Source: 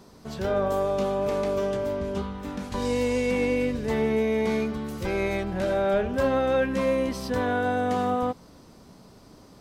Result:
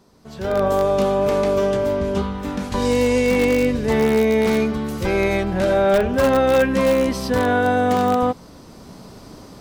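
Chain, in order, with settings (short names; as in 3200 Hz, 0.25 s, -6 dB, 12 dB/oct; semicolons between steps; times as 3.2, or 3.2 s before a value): in parallel at -9.5 dB: wrapped overs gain 16.5 dB; on the sum: AGC gain up to 15 dB; gain -7 dB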